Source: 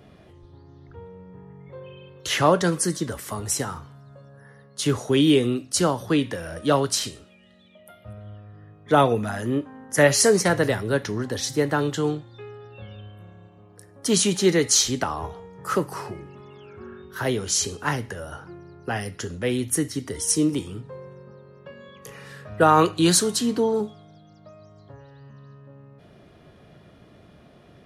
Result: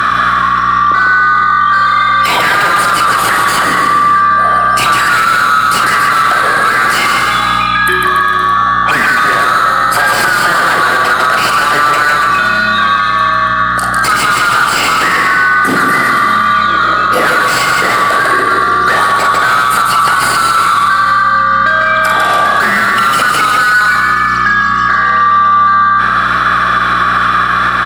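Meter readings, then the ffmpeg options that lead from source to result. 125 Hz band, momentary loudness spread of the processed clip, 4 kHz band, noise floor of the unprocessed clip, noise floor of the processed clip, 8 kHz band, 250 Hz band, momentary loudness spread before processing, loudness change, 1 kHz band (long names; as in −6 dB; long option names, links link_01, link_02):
+4.0 dB, 2 LU, +13.0 dB, −52 dBFS, −12 dBFS, +3.5 dB, +1.5 dB, 23 LU, +13.5 dB, +22.5 dB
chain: -filter_complex "[0:a]afftfilt=real='real(if(lt(b,960),b+48*(1-2*mod(floor(b/48),2)),b),0)':imag='imag(if(lt(b,960),b+48*(1-2*mod(floor(b/48),2)),b),0)':win_size=2048:overlap=0.75,asplit=2[link_01][link_02];[link_02]highpass=frequency=720:poles=1,volume=35dB,asoftclip=type=tanh:threshold=-3dB[link_03];[link_01][link_03]amix=inputs=2:normalize=0,lowpass=frequency=3500:poles=1,volume=-6dB,asplit=2[link_04][link_05];[link_05]asoftclip=type=tanh:threshold=-21dB,volume=-9dB[link_06];[link_04][link_06]amix=inputs=2:normalize=0,acrossover=split=140|2700|7600[link_07][link_08][link_09][link_10];[link_07]acompressor=threshold=-40dB:ratio=4[link_11];[link_08]acompressor=threshold=-12dB:ratio=4[link_12];[link_09]acompressor=threshold=-31dB:ratio=4[link_13];[link_10]acompressor=threshold=-31dB:ratio=4[link_14];[link_11][link_12][link_13][link_14]amix=inputs=4:normalize=0,aeval=exprs='val(0)+0.0158*(sin(2*PI*60*n/s)+sin(2*PI*2*60*n/s)/2+sin(2*PI*3*60*n/s)/3+sin(2*PI*4*60*n/s)/4+sin(2*PI*5*60*n/s)/5)':channel_layout=same,acompressor=threshold=-18dB:ratio=6,lowshelf=frequency=100:width_type=q:width=3:gain=-7,asplit=2[link_15][link_16];[link_16]adelay=46,volume=-6.5dB[link_17];[link_15][link_17]amix=inputs=2:normalize=0,asplit=2[link_18][link_19];[link_19]aecho=0:1:150|285|406.5|515.8|614.3:0.631|0.398|0.251|0.158|0.1[link_20];[link_18][link_20]amix=inputs=2:normalize=0,adynamicequalizer=threshold=0.00398:dfrequency=6100:dqfactor=4.1:tfrequency=6100:tqfactor=4.1:attack=5:release=100:ratio=0.375:range=4:mode=cutabove:tftype=bell,alimiter=level_in=12dB:limit=-1dB:release=50:level=0:latency=1,volume=-1dB"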